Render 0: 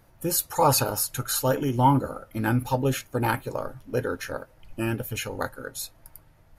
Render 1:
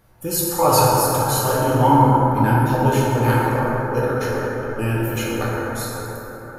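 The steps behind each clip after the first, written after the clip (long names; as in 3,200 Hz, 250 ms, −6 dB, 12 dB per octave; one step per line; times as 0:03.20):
dense smooth reverb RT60 4.6 s, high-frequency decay 0.3×, DRR −6.5 dB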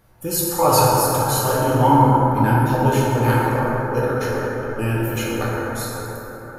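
no processing that can be heard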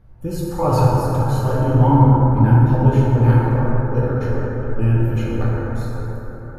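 RIAA equalisation playback
level −5 dB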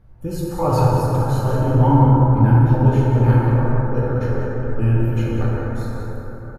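single-tap delay 187 ms −9.5 dB
level −1 dB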